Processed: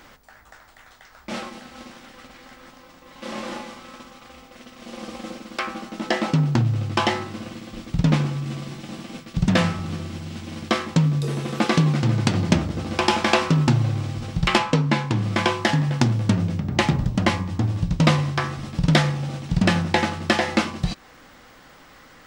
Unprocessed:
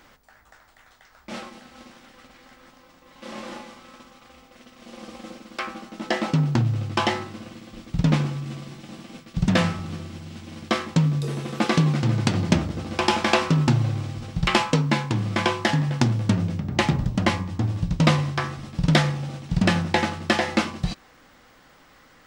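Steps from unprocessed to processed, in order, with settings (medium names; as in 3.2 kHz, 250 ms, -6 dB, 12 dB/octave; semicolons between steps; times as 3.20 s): 14.57–15.22 s: low-pass 3.8 kHz -> 8.3 kHz 6 dB/octave; in parallel at -2 dB: compression, threshold -32 dBFS, peak gain reduction 18 dB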